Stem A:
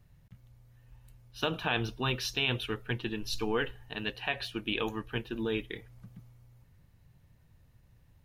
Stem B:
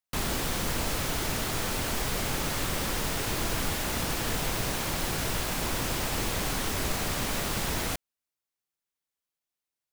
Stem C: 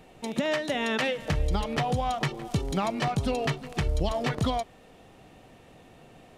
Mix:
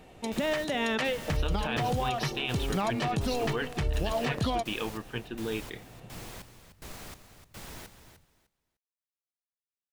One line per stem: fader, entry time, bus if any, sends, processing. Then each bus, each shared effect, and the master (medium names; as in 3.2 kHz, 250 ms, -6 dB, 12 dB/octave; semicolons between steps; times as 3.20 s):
-1.5 dB, 0.00 s, no send, no echo send, none
-14.0 dB, 0.00 s, no send, echo send -11 dB, trance gate "....xxxx." 187 bpm -60 dB
0.0 dB, 0.00 s, no send, no echo send, none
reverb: none
echo: feedback delay 302 ms, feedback 20%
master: peak limiter -20 dBFS, peak gain reduction 6.5 dB